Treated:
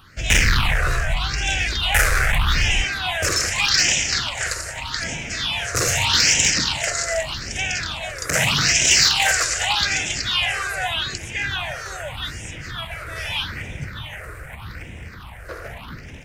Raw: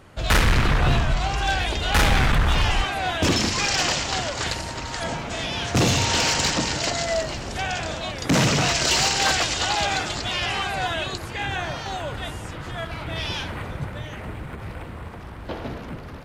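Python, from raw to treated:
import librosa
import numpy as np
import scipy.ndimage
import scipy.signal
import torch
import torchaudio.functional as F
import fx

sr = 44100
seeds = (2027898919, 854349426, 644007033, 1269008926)

y = fx.tilt_shelf(x, sr, db=-8.5, hz=830.0)
y = fx.phaser_stages(y, sr, stages=6, low_hz=220.0, high_hz=1200.0, hz=0.82, feedback_pct=25)
y = fx.low_shelf(y, sr, hz=250.0, db=7.0)
y = y * 10.0 ** (1.0 / 20.0)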